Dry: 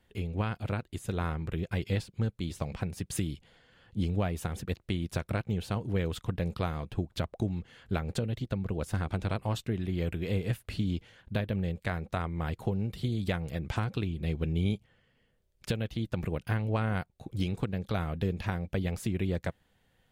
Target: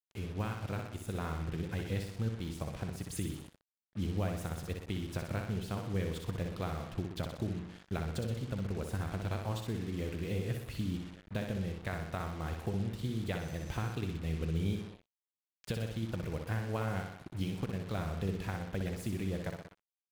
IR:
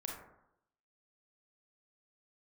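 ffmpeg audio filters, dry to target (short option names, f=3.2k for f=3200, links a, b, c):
-filter_complex "[0:a]aecho=1:1:62|124|186|248|310|372|434:0.531|0.292|0.161|0.0883|0.0486|0.0267|0.0147,asettb=1/sr,asplit=3[a][b][c];[a]atrim=end=13.404[d];[b]atrim=start=13.4:end=13.93,asetpts=PTS-STARTPTS,afade=t=in:d=0.004:c=qsin,afade=t=out:st=0.526:d=0.004:c=qsin,aeval=exprs='val(0)+0.002*sin(2*PI*6100*n/s)':c=same[e];[c]atrim=start=13.926[f];[d][e]acrossfade=d=0.004:c1=hsin:c2=qsin[g];[g][f]acrossfade=d=0.004:c1=qsin:c2=hsin,asplit=2[h][i];[1:a]atrim=start_sample=2205,lowpass=2.2k[j];[i][j]afir=irnorm=-1:irlink=0,volume=-15.5dB[k];[h][k]amix=inputs=2:normalize=0,acrusher=bits=6:mix=0:aa=0.5,volume=-6.5dB"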